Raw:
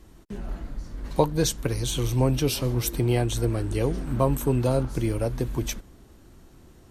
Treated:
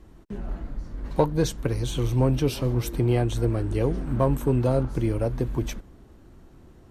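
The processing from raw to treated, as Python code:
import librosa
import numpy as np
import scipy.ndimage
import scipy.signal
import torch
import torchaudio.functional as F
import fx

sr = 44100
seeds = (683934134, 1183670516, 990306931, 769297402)

p1 = fx.high_shelf(x, sr, hz=3000.0, db=-10.5)
p2 = np.clip(p1, -10.0 ** (-16.5 / 20.0), 10.0 ** (-16.5 / 20.0))
p3 = p1 + (p2 * 10.0 ** (-7.0 / 20.0))
y = p3 * 10.0 ** (-2.0 / 20.0)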